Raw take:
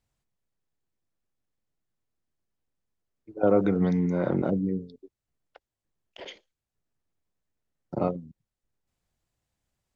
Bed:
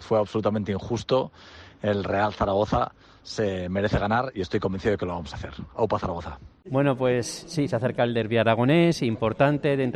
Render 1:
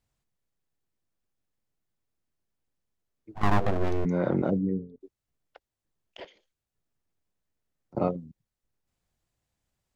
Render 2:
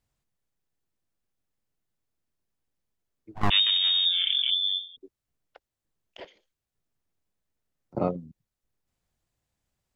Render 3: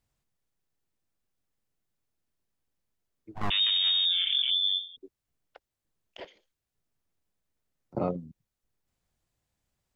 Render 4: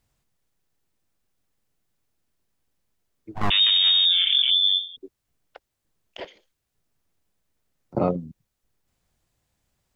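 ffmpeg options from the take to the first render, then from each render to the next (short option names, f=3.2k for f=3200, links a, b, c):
-filter_complex "[0:a]asplit=3[a][b][c];[a]afade=t=out:st=3.34:d=0.02[d];[b]aeval=exprs='abs(val(0))':c=same,afade=t=in:st=3.34:d=0.02,afade=t=out:st=4.04:d=0.02[e];[c]afade=t=in:st=4.04:d=0.02[f];[d][e][f]amix=inputs=3:normalize=0,asettb=1/sr,asplit=3[g][h][i];[g]atrim=end=4.574[j];[h]atrim=start=4.57:end=5.01,asetpts=PTS-STARTPTS,afade=t=in:d=0.004:c=qsin,afade=t=out:st=0.436:d=0.004:c=qsin,lowpass=f=1.8k:w=0.5412,lowpass=f=1.8k:w=1.3066[k];[i]atrim=start=5.006[l];[j][k]acrossfade=d=0.004:c1=hsin:c2=qsin[m];[m][l]acrossfade=d=0.004:c1=qsin:c2=hsin,asettb=1/sr,asplit=3[n][o][p];[n]atrim=end=6.254[q];[o]atrim=start=6.25:end=7.95,asetpts=PTS-STARTPTS,afade=t=in:d=0.004:c=qsin,afade=t=out:st=1.696:d=0.004:c=qsin,acompressor=threshold=-58dB:ratio=3:attack=3.2:release=140:knee=1:detection=peak[r];[p]atrim=start=7.946[s];[q][r]acrossfade=d=0.004:c1=hsin:c2=qsin[t];[t][s]acrossfade=d=0.004:c1=qsin:c2=hsin"
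-filter_complex "[0:a]asettb=1/sr,asplit=3[a][b][c];[a]atrim=end=3.504[d];[b]atrim=start=3.5:end=4.97,asetpts=PTS-STARTPTS,afade=t=in:d=0.004:c=qsin,afade=t=out:st=1.466:d=0.004:c=qsin,lowpass=f=3.1k:t=q:w=0.5098,lowpass=f=3.1k:t=q:w=0.6013,lowpass=f=3.1k:t=q:w=0.9,lowpass=f=3.1k:t=q:w=2.563,afreqshift=-3700[e];[c]atrim=start=4.966[f];[d][e]acrossfade=d=0.004:c1=hsin:c2=qsin[g];[g][f]acrossfade=d=0.004:c1=qsin:c2=hsin"
-af "alimiter=limit=-18.5dB:level=0:latency=1:release=13"
-af "volume=7dB"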